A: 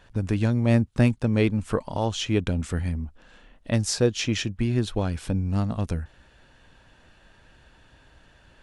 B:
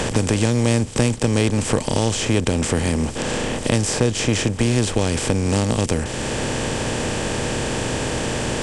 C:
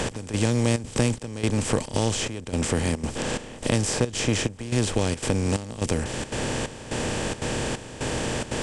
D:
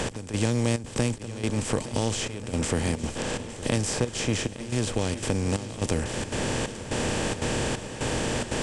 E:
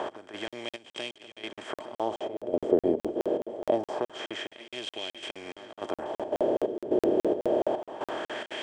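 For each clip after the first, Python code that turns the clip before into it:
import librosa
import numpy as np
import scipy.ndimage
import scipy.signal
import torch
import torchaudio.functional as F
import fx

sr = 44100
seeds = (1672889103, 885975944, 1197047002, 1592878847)

y1 = fx.bin_compress(x, sr, power=0.4)
y1 = fx.peak_eq(y1, sr, hz=8000.0, db=9.5, octaves=0.47)
y1 = fx.band_squash(y1, sr, depth_pct=70)
y2 = fx.step_gate(y1, sr, bpm=178, pattern='x...xxxxx.xxx', floor_db=-12.0, edge_ms=4.5)
y2 = y2 * 10.0 ** (-4.0 / 20.0)
y3 = fx.rider(y2, sr, range_db=10, speed_s=2.0)
y3 = fx.echo_swing(y3, sr, ms=1437, ratio=1.5, feedback_pct=46, wet_db=-15)
y3 = y3 * 10.0 ** (-2.5 / 20.0)
y4 = fx.small_body(y3, sr, hz=(360.0, 620.0, 3200.0), ring_ms=25, db=16)
y4 = fx.wah_lfo(y4, sr, hz=0.25, low_hz=410.0, high_hz=2600.0, q=2.0)
y4 = fx.buffer_crackle(y4, sr, first_s=0.48, period_s=0.21, block=2048, kind='zero')
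y4 = y4 * 10.0 ** (-2.0 / 20.0)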